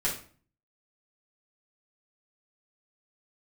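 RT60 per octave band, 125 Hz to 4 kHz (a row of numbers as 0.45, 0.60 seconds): 0.65, 0.55, 0.45, 0.40, 0.40, 0.35 seconds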